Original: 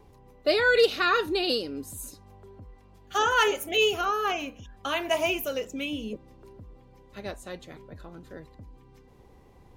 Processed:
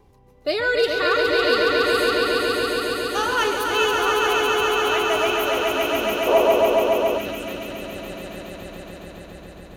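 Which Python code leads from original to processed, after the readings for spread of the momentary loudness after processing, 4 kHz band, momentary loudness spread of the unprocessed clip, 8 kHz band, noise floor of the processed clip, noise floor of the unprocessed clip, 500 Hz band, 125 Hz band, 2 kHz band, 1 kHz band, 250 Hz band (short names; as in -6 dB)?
17 LU, +6.5 dB, 19 LU, +6.5 dB, -43 dBFS, -55 dBFS, +8.5 dB, +6.0 dB, +6.5 dB, +7.5 dB, +7.5 dB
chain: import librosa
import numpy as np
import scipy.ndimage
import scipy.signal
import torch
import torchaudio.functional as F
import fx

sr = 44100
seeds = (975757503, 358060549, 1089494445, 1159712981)

y = fx.echo_swell(x, sr, ms=139, loudest=5, wet_db=-4)
y = fx.spec_box(y, sr, start_s=6.27, length_s=0.91, low_hz=360.0, high_hz=1200.0, gain_db=10)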